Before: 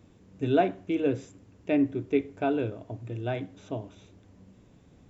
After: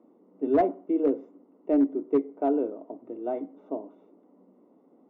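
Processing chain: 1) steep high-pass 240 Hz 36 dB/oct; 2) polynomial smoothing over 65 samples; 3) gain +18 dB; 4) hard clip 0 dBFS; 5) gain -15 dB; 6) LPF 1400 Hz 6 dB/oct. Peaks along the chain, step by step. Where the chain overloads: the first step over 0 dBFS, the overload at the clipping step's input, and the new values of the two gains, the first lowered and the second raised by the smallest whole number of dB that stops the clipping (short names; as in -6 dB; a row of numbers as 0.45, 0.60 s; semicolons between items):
-11.5, -12.0, +6.0, 0.0, -15.0, -15.0 dBFS; step 3, 6.0 dB; step 3 +12 dB, step 5 -9 dB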